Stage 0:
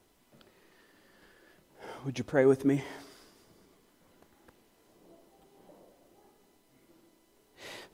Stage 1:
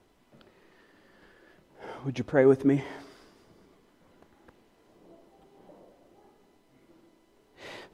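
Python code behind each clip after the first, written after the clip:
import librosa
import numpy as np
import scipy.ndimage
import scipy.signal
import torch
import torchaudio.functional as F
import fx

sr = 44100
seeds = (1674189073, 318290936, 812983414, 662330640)

y = fx.lowpass(x, sr, hz=2900.0, slope=6)
y = y * librosa.db_to_amplitude(3.5)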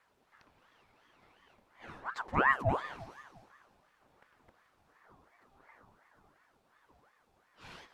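y = fx.echo_feedback(x, sr, ms=173, feedback_pct=59, wet_db=-17.5)
y = fx.ring_lfo(y, sr, carrier_hz=940.0, swing_pct=60, hz=2.8)
y = y * librosa.db_to_amplitude(-4.5)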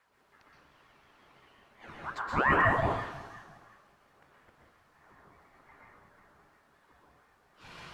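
y = fx.rev_plate(x, sr, seeds[0], rt60_s=0.64, hf_ratio=0.9, predelay_ms=110, drr_db=-2.5)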